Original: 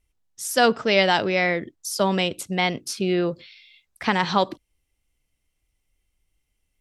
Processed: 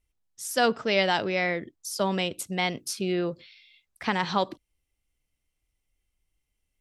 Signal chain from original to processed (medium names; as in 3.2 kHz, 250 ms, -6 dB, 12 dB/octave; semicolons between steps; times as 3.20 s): 2.39–3.12 s: treble shelf 7.7 kHz +7.5 dB; trim -5 dB